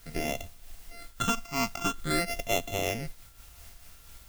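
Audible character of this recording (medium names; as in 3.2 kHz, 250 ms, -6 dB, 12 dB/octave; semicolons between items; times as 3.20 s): a buzz of ramps at a fixed pitch in blocks of 64 samples; phasing stages 8, 0.47 Hz, lowest notch 490–1500 Hz; a quantiser's noise floor 10-bit, dither triangular; random flutter of the level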